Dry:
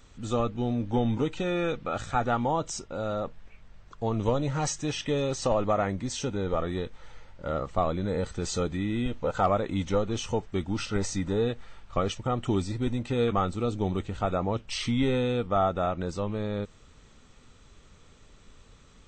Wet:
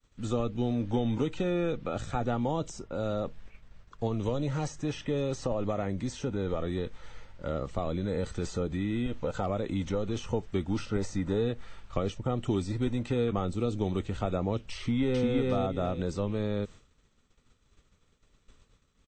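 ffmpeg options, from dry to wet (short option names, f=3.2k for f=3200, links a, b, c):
-filter_complex "[0:a]asettb=1/sr,asplit=3[a][b][c];[a]atrim=end=4.074[d];[b]atrim=start=4.07:end=10.17,asetpts=PTS-STARTPTS,afade=t=in:d=0.004:c=qsin,afade=t=out:st=6.096:d=0.004:c=qsin,acompressor=threshold=-30dB:ratio=1.5:attack=3.2:release=140:knee=1:detection=peak[e];[c]atrim=start=10.166[f];[d][e]acrossfade=d=0.004:c1=hsin:c2=qsin[g];[g][f]acrossfade=d=0.004:c1=qsin:c2=hsin,asplit=2[h][i];[i]afade=t=in:st=14.79:d=0.01,afade=t=out:st=15.31:d=0.01,aecho=0:1:350|700|1050:0.944061|0.188812|0.0377624[j];[h][j]amix=inputs=2:normalize=0,agate=range=-33dB:threshold=-43dB:ratio=3:detection=peak,equalizer=f=790:t=o:w=0.77:g=-2.5,acrossover=split=300|820|1900[k][l][m][n];[k]acompressor=threshold=-30dB:ratio=4[o];[l]acompressor=threshold=-31dB:ratio=4[p];[m]acompressor=threshold=-50dB:ratio=4[q];[n]acompressor=threshold=-48dB:ratio=4[r];[o][p][q][r]amix=inputs=4:normalize=0,volume=1.5dB"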